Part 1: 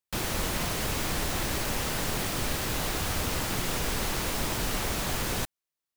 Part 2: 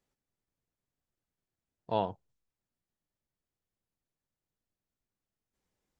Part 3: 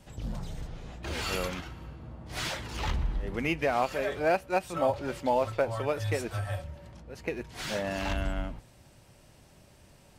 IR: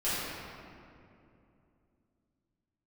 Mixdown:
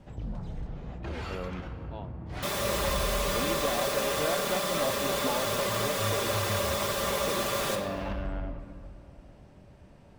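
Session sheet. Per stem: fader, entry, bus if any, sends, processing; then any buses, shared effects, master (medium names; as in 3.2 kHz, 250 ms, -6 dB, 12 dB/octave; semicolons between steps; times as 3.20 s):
-6.5 dB, 2.30 s, send -10 dB, high-pass 340 Hz 6 dB/octave; comb 5 ms, depth 92%; small resonant body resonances 550/1100/3500 Hz, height 17 dB, ringing for 65 ms
-13.5 dB, 0.00 s, no send, none
+3.0 dB, 0.00 s, send -18.5 dB, compression 2.5:1, threshold -35 dBFS, peak gain reduction 9.5 dB; low-pass 1.1 kHz 6 dB/octave; saturation -28.5 dBFS, distortion -21 dB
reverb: on, RT60 2.7 s, pre-delay 4 ms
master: none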